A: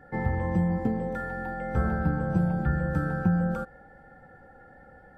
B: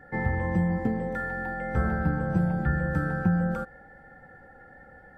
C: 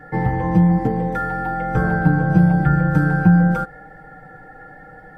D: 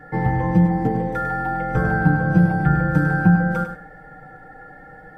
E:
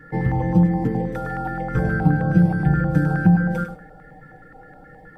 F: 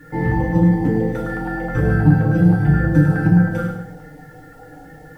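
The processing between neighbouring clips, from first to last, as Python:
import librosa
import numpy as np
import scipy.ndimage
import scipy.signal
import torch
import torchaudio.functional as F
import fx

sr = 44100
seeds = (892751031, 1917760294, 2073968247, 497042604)

y1 = fx.peak_eq(x, sr, hz=1900.0, db=7.0, octaves=0.37)
y2 = y1 + 0.81 * np.pad(y1, (int(6.5 * sr / 1000.0), 0))[:len(y1)]
y2 = y2 * librosa.db_to_amplitude(7.5)
y3 = fx.echo_feedback(y2, sr, ms=100, feedback_pct=18, wet_db=-8.5)
y3 = y3 * librosa.db_to_amplitude(-1.5)
y4 = fx.filter_held_notch(y3, sr, hz=9.5, low_hz=720.0, high_hz=1900.0)
y5 = fx.quant_dither(y4, sr, seeds[0], bits=10, dither='none')
y5 = fx.rev_fdn(y5, sr, rt60_s=0.69, lf_ratio=1.35, hf_ratio=1.0, size_ms=20.0, drr_db=-2.5)
y5 = y5 * librosa.db_to_amplitude(-1.0)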